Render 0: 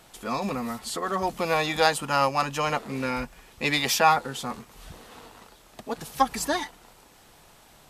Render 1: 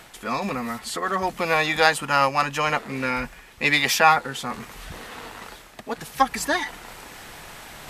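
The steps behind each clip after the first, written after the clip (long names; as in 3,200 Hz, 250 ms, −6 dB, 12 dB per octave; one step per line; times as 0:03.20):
parametric band 1,900 Hz +7 dB 1.1 octaves
reversed playback
upward compression, threshold −31 dBFS
reversed playback
level +1 dB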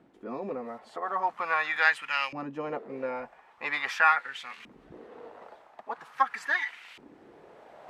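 auto-filter band-pass saw up 0.43 Hz 260–2,900 Hz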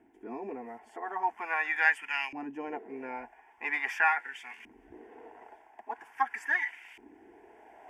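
phaser with its sweep stopped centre 820 Hz, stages 8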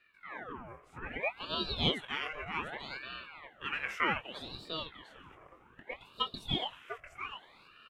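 double-tracking delay 22 ms −7.5 dB
single-tap delay 698 ms −8.5 dB
ring modulator whose carrier an LFO sweeps 1,200 Hz, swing 75%, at 0.64 Hz
level −2.5 dB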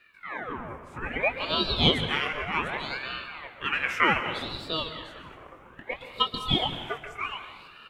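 dense smooth reverb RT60 1.1 s, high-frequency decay 0.7×, pre-delay 115 ms, DRR 9.5 dB
level +8.5 dB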